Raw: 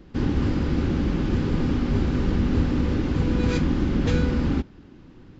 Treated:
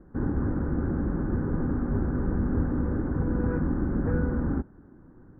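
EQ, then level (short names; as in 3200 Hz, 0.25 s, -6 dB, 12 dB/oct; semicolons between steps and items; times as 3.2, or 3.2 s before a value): elliptic low-pass 1600 Hz, stop band 50 dB; -3.5 dB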